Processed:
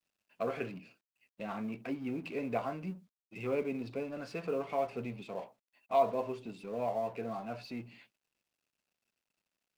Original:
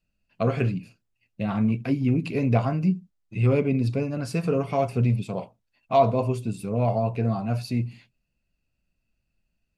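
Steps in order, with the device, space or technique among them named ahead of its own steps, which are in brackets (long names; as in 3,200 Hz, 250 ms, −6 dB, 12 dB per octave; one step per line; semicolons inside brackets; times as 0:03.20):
phone line with mismatched companding (band-pass filter 340–3,400 Hz; mu-law and A-law mismatch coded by mu)
level −8.5 dB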